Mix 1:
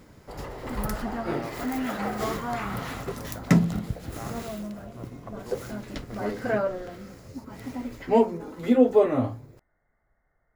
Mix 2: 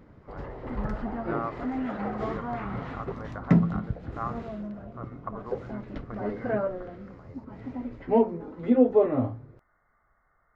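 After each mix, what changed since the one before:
speech: add parametric band 1,200 Hz +14.5 dB 0.65 octaves
background: add head-to-tape spacing loss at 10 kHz 37 dB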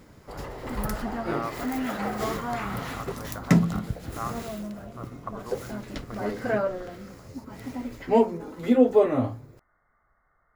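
background: remove head-to-tape spacing loss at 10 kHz 37 dB

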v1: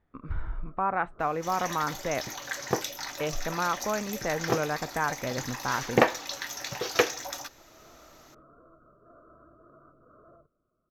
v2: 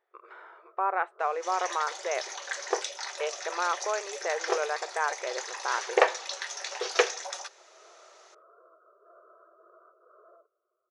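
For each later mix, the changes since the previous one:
master: add linear-phase brick-wall band-pass 350–11,000 Hz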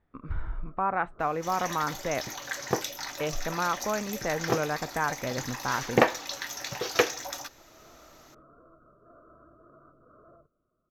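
master: remove linear-phase brick-wall band-pass 350–11,000 Hz

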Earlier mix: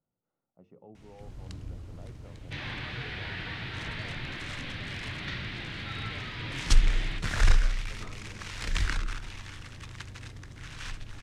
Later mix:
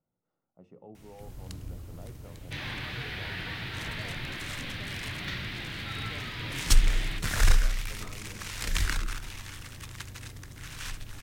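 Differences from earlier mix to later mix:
speech: send +11.0 dB
master: remove high-frequency loss of the air 74 metres

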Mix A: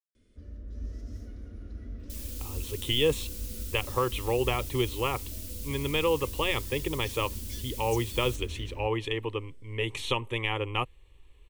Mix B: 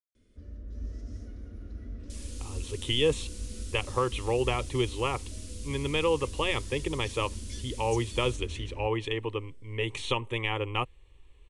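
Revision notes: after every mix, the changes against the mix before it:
master: add Chebyshev low-pass filter 10,000 Hz, order 5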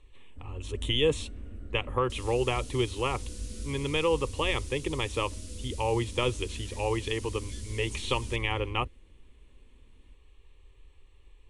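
speech: entry −2.00 s
first sound: add parametric band 5,400 Hz −11 dB 0.52 octaves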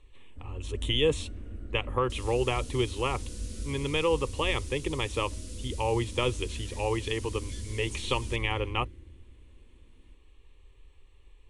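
first sound: send on

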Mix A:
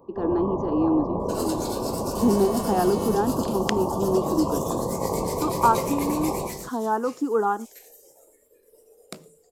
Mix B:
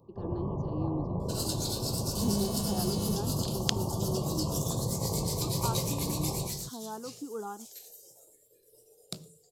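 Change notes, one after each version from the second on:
speech −9.0 dB
first sound −3.5 dB
master: add graphic EQ with 10 bands 125 Hz +10 dB, 250 Hz −6 dB, 500 Hz −5 dB, 1,000 Hz −6 dB, 2,000 Hz −12 dB, 4,000 Hz +7 dB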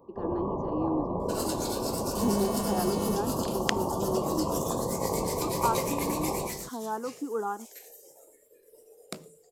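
master: add graphic EQ with 10 bands 125 Hz −10 dB, 250 Hz +6 dB, 500 Hz +5 dB, 1,000 Hz +6 dB, 2,000 Hz +12 dB, 4,000 Hz −7 dB

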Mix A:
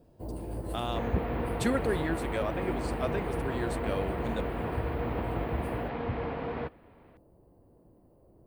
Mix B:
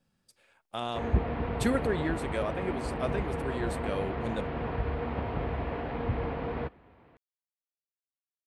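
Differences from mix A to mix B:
first sound: muted
master: add low-shelf EQ 85 Hz +8 dB

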